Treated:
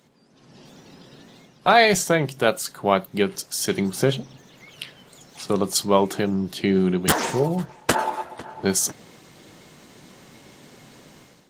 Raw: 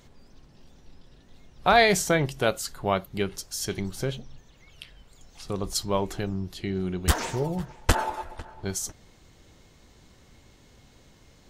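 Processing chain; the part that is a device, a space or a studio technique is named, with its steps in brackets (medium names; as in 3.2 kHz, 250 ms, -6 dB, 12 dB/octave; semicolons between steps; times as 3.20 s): video call (high-pass 140 Hz 24 dB/octave; level rider gain up to 13 dB; trim -1 dB; Opus 24 kbps 48 kHz)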